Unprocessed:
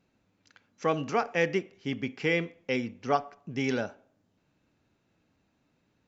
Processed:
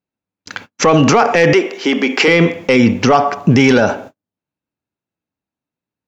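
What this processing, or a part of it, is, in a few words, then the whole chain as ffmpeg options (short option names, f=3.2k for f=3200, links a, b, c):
mastering chain: -filter_complex "[0:a]highpass=f=55:p=1,equalizer=f=940:t=o:w=0.64:g=3,acompressor=threshold=-29dB:ratio=2,asoftclip=type=tanh:threshold=-21dB,alimiter=level_in=32.5dB:limit=-1dB:release=50:level=0:latency=1,agate=range=-47dB:threshold=-30dB:ratio=16:detection=peak,asettb=1/sr,asplit=3[a][b][c];[a]atrim=end=1.534[d];[b]atrim=start=1.53:end=2.28,asetpts=PTS-STARTPTS,afade=t=in:d=0.004:c=qsin,afade=t=out:st=0.746:d=0.004:c=qsin,highpass=f=290:w=0.5412,highpass=f=290:w=1.3066[e];[c]atrim=start=2.276[f];[d][e]acrossfade=d=0.004:c1=hsin:c2=qsin[g];[g][f]acrossfade=d=0.004:c1=qsin:c2=hsin,volume=-1dB"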